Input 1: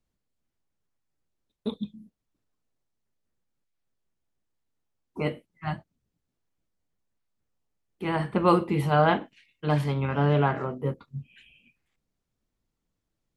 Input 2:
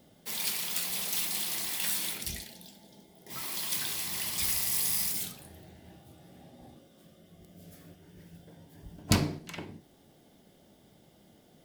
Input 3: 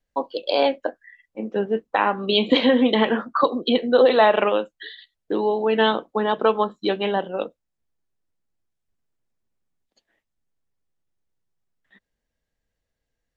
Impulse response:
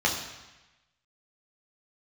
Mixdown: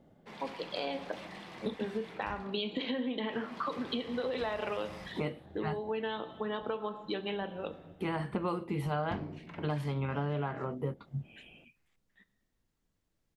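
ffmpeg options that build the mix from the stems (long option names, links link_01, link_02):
-filter_complex "[0:a]volume=0.5dB[link_01];[1:a]lowpass=1500,volume=-1dB[link_02];[2:a]alimiter=limit=-10dB:level=0:latency=1:release=90,adelay=250,volume=-10dB,asplit=2[link_03][link_04];[link_04]volume=-21.5dB[link_05];[3:a]atrim=start_sample=2205[link_06];[link_05][link_06]afir=irnorm=-1:irlink=0[link_07];[link_01][link_02][link_03][link_07]amix=inputs=4:normalize=0,acompressor=threshold=-31dB:ratio=6"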